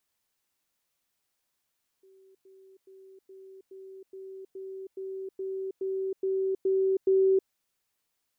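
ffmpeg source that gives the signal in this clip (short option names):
-f lavfi -i "aevalsrc='pow(10,(-55+3*floor(t/0.42))/20)*sin(2*PI*383*t)*clip(min(mod(t,0.42),0.32-mod(t,0.42))/0.005,0,1)':d=5.46:s=44100"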